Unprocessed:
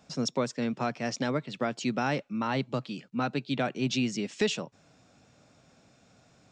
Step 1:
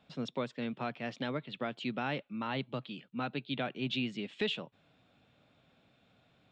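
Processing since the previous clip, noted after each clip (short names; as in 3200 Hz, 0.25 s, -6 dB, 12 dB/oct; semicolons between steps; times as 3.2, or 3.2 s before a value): resonant high shelf 4500 Hz -9.5 dB, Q 3; gain -7 dB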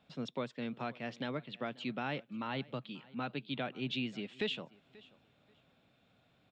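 feedback echo 0.535 s, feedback 21%, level -22.5 dB; gain -2.5 dB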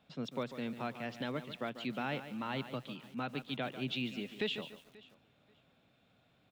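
lo-fi delay 0.144 s, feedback 35%, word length 9-bit, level -11 dB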